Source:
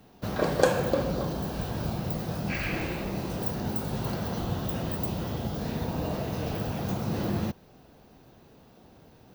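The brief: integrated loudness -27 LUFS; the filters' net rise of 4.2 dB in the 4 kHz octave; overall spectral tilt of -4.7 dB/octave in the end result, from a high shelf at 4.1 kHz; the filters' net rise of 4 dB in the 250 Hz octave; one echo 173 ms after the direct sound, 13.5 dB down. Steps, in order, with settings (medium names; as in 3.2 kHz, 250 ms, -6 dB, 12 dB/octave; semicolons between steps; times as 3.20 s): peaking EQ 250 Hz +5.5 dB; peaking EQ 4 kHz +3.5 dB; treble shelf 4.1 kHz +3 dB; delay 173 ms -13.5 dB; trim +1 dB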